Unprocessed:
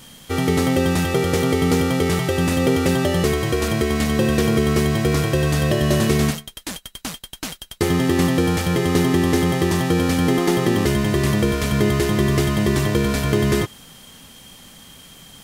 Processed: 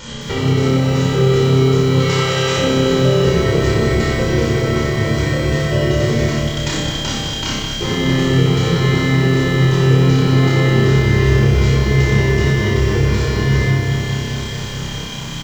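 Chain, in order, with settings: 1.95–2.57 HPF 840 Hz 12 dB/oct; compressor 6:1, threshold -31 dBFS, peak gain reduction 16.5 dB; tremolo saw down 11 Hz, depth 50%; one-sided clip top -30.5 dBFS; flange 0.75 Hz, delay 3.6 ms, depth 8.1 ms, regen -69%; on a send: flutter echo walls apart 5.2 m, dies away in 0.72 s; on the sum: shoebox room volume 1900 m³, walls furnished, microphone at 4.7 m; downsampling 16000 Hz; maximiser +19 dB; lo-fi delay 0.211 s, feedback 80%, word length 6-bit, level -7.5 dB; gain -5 dB

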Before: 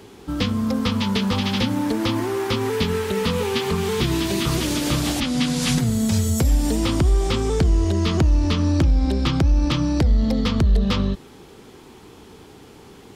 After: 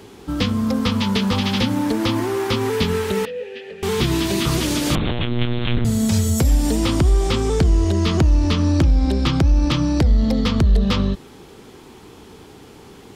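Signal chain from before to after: 3.25–3.83 vowel filter e; 4.95–5.85 monotone LPC vocoder at 8 kHz 120 Hz; gain +2 dB

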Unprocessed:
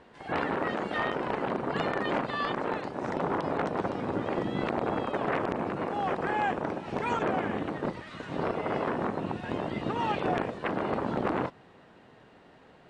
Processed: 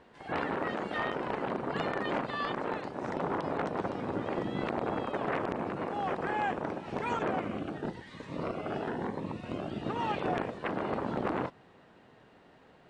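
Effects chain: 7.4–9.85 cascading phaser rising 1 Hz; gain -3 dB

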